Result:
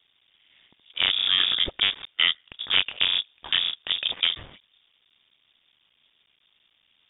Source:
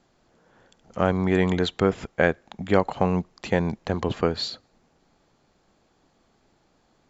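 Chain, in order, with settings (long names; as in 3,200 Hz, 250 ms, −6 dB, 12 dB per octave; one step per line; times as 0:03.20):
sub-harmonics by changed cycles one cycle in 3, muted
pitch vibrato 1.2 Hz 16 cents
voice inversion scrambler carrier 3,600 Hz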